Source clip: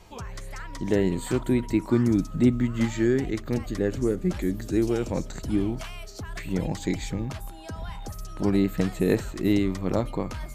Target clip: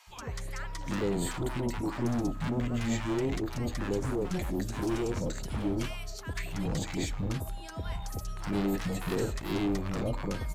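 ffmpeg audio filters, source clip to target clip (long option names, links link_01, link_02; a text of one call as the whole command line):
ffmpeg -i in.wav -filter_complex "[0:a]asoftclip=type=hard:threshold=-25.5dB,acrossover=split=250|840[link_01][link_02][link_03];[link_01]adelay=70[link_04];[link_02]adelay=100[link_05];[link_04][link_05][link_03]amix=inputs=3:normalize=0" out.wav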